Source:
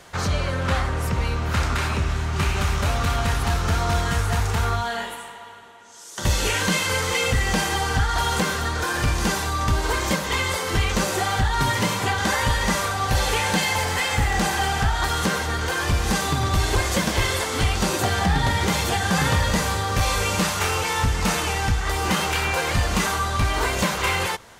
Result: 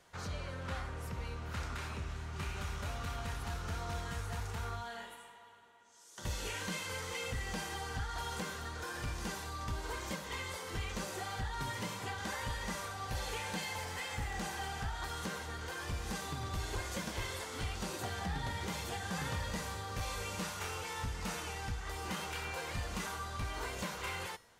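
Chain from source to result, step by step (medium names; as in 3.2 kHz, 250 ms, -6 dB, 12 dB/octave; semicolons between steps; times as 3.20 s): feedback comb 480 Hz, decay 0.58 s, mix 70%; trim -7.5 dB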